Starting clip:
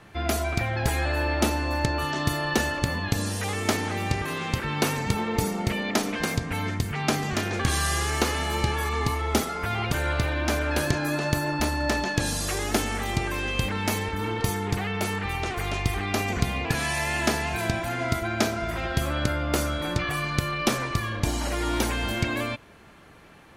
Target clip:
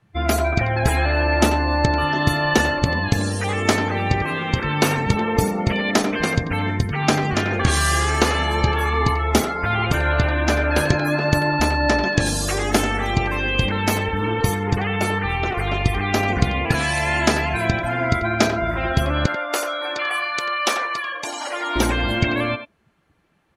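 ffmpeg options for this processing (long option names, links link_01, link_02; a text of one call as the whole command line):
ffmpeg -i in.wav -filter_complex "[0:a]asettb=1/sr,asplit=3[link_01][link_02][link_03];[link_01]atrim=end=19.264[link_04];[link_02]atrim=start=19.26:end=21.76,asetpts=PTS-STARTPTS,afade=type=in:duration=0.004:curve=qsin,afade=type=out:start_time=2.496:duration=0.004:curve=qsin,highpass=600[link_05];[link_03]atrim=start=21.756[link_06];[link_04][link_05]acrossfade=duration=0.004:curve1=hsin:curve2=qsin[link_07];[link_07][link_06]acrossfade=duration=0.004:curve1=qsin:curve2=hsin,afftdn=noise_reduction=22:noise_floor=-36,asplit=2[link_08][link_09];[link_09]adelay=90,highpass=300,lowpass=3400,asoftclip=type=hard:threshold=-18dB,volume=-8dB[link_10];[link_08][link_10]amix=inputs=2:normalize=0,volume=6.5dB" out.wav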